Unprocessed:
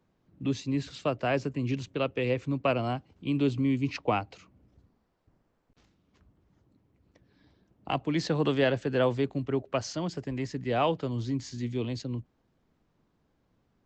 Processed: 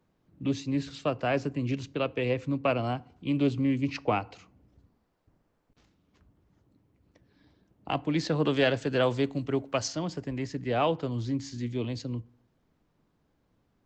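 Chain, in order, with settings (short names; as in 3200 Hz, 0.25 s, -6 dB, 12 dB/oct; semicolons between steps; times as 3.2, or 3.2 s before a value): 8.54–9.88 high shelf 3500 Hz +9.5 dB; FDN reverb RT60 0.59 s, low-frequency decay 1.1×, high-frequency decay 0.6×, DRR 18.5 dB; Doppler distortion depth 0.13 ms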